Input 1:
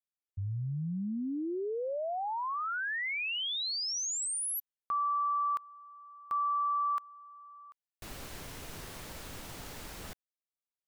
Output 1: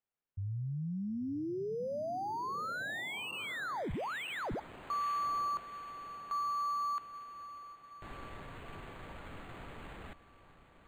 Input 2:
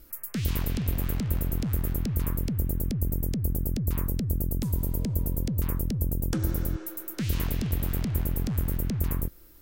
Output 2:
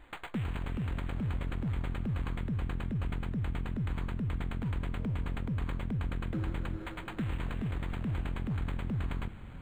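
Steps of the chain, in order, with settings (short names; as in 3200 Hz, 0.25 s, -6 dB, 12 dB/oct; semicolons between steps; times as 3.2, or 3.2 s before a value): limiter -23.5 dBFS; diffused feedback echo 0.857 s, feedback 57%, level -14.5 dB; decimation joined by straight lines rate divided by 8×; gain -2.5 dB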